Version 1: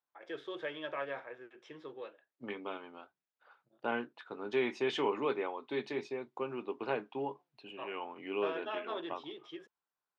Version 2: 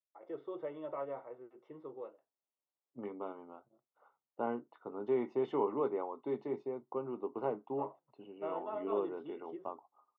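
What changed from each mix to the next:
second voice: entry +0.55 s; master: add polynomial smoothing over 65 samples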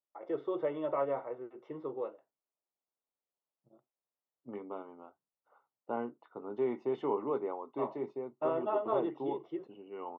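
first voice +8.0 dB; second voice: entry +1.50 s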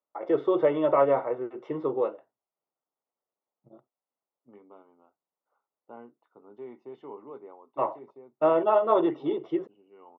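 first voice +11.0 dB; second voice -10.0 dB

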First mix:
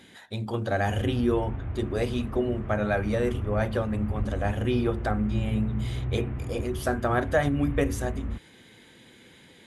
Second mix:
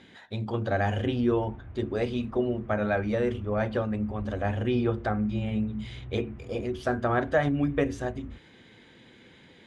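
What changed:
speech: add air absorption 110 m; background -11.0 dB

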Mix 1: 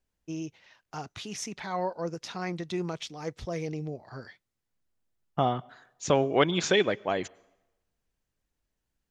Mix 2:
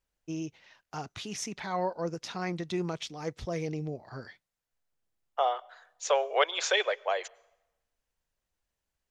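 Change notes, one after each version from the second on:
second voice: add steep high-pass 470 Hz 48 dB/oct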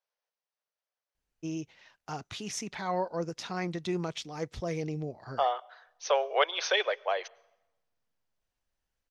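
first voice: entry +1.15 s; second voice: add Chebyshev low-pass 6300 Hz, order 10

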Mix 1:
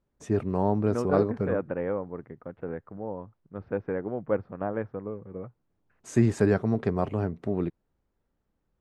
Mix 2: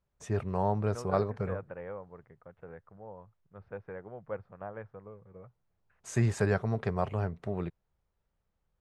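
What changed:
second voice -7.5 dB; master: add bell 280 Hz -13.5 dB 1 oct

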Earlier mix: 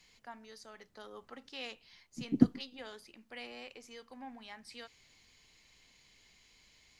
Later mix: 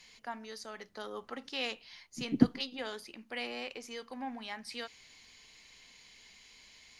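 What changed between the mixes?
first voice +7.5 dB; master: add notch 7700 Hz, Q 12

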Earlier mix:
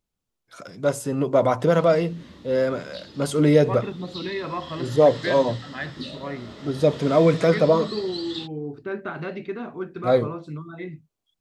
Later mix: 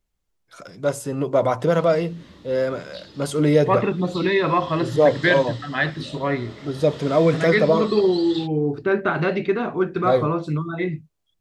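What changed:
second voice +10.5 dB; master: add bell 240 Hz -4.5 dB 0.28 oct

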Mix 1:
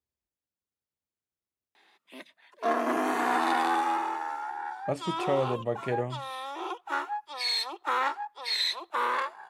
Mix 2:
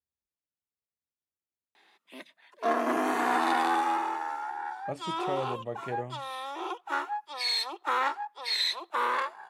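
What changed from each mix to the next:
speech -6.0 dB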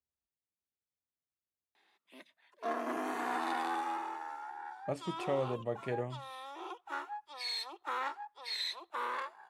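background -9.0 dB

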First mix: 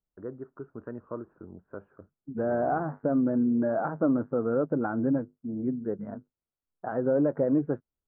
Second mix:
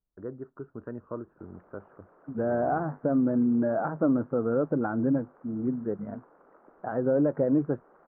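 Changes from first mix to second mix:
background: unmuted; master: add low shelf 120 Hz +4 dB

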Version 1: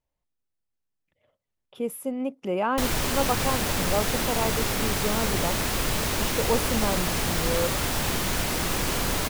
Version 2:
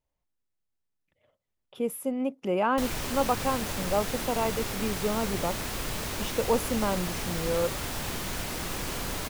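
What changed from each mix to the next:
background -7.0 dB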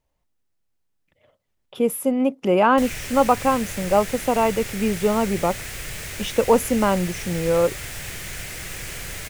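speech +9.0 dB; background: add graphic EQ 125/250/1000/2000/4000/8000 Hz +3/-10/-10/+8/-3/+4 dB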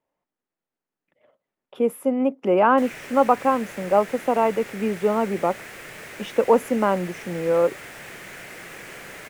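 master: add three-band isolator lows -24 dB, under 180 Hz, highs -12 dB, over 2300 Hz

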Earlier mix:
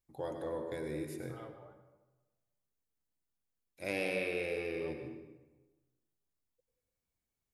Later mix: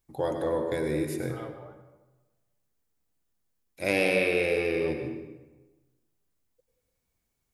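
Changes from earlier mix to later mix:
first voice +10.5 dB; second voice +8.0 dB

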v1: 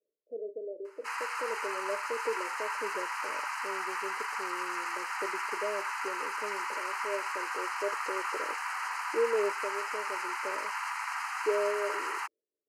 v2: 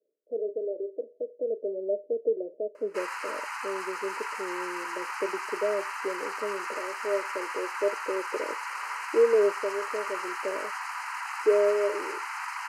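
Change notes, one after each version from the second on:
speech +7.5 dB; background: entry +1.90 s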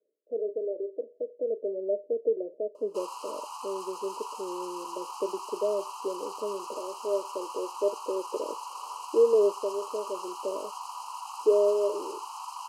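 background: add elliptic band-stop 1100–3000 Hz, stop band 80 dB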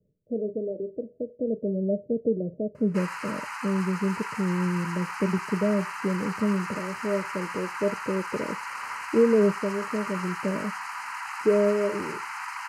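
background: remove elliptic band-stop 1100–3000 Hz, stop band 80 dB; master: remove steep high-pass 350 Hz 36 dB/oct

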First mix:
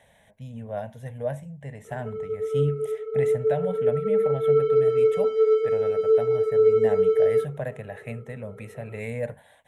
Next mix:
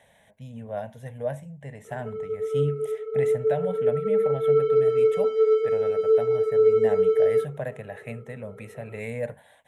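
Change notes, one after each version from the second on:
master: add low shelf 86 Hz -7 dB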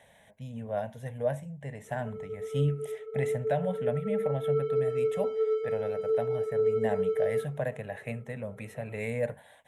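background -10.5 dB; reverb: on, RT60 2.0 s

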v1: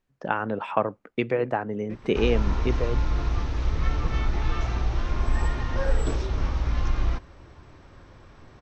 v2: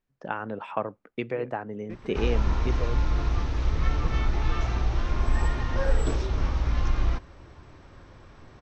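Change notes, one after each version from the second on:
first voice -5.5 dB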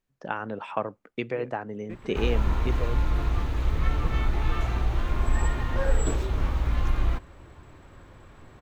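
background: remove synth low-pass 5600 Hz, resonance Q 4.4; master: add high shelf 4500 Hz +8 dB

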